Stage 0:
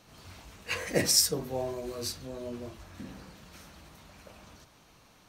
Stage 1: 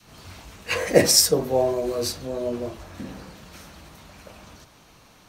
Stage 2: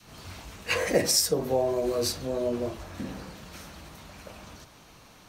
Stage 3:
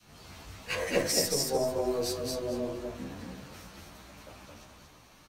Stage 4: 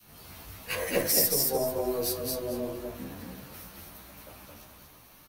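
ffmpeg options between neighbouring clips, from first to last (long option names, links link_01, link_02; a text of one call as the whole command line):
ffmpeg -i in.wav -af "adynamicequalizer=threshold=0.00501:dfrequency=540:dqfactor=0.87:tfrequency=540:tqfactor=0.87:attack=5:release=100:ratio=0.375:range=3.5:mode=boostabove:tftype=bell,volume=6.5dB" out.wav
ffmpeg -i in.wav -af "acompressor=threshold=-23dB:ratio=2.5" out.wav
ffmpeg -i in.wav -filter_complex "[0:a]aecho=1:1:222|444|666:0.708|0.17|0.0408,aeval=exprs='0.447*(cos(1*acos(clip(val(0)/0.447,-1,1)))-cos(1*PI/2))+0.0141*(cos(6*acos(clip(val(0)/0.447,-1,1)))-cos(6*PI/2))':channel_layout=same,asplit=2[link_01][link_02];[link_02]adelay=11.8,afreqshift=2.9[link_03];[link_01][link_03]amix=inputs=2:normalize=1,volume=-2.5dB" out.wav
ffmpeg -i in.wav -af "aexciter=amount=7.2:drive=2.4:freq=10000" out.wav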